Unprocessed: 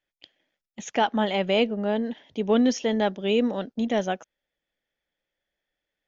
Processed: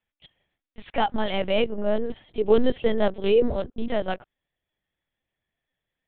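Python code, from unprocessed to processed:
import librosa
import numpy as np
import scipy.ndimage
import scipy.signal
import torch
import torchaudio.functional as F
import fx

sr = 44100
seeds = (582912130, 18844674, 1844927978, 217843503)

y = fx.dynamic_eq(x, sr, hz=480.0, q=1.2, threshold_db=-36.0, ratio=4.0, max_db=5, at=(1.76, 3.8), fade=0.02)
y = fx.lpc_vocoder(y, sr, seeds[0], excitation='pitch_kept', order=8)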